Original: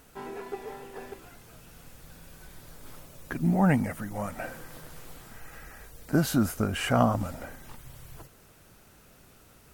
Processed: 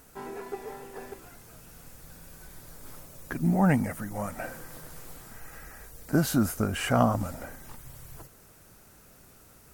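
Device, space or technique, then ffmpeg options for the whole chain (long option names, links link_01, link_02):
exciter from parts: -filter_complex "[0:a]asplit=2[link_01][link_02];[link_02]highpass=2300,asoftclip=type=tanh:threshold=-38dB,highpass=3200,volume=-4.5dB[link_03];[link_01][link_03]amix=inputs=2:normalize=0"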